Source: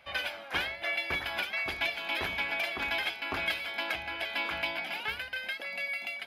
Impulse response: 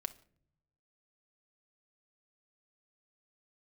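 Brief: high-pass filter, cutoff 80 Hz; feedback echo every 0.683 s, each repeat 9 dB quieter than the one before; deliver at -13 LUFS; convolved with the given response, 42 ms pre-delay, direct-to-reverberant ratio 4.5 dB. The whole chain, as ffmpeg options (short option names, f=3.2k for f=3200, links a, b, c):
-filter_complex "[0:a]highpass=80,aecho=1:1:683|1366|2049|2732:0.355|0.124|0.0435|0.0152,asplit=2[a][b];[1:a]atrim=start_sample=2205,adelay=42[c];[b][c]afir=irnorm=-1:irlink=0,volume=-3dB[d];[a][d]amix=inputs=2:normalize=0,volume=17dB"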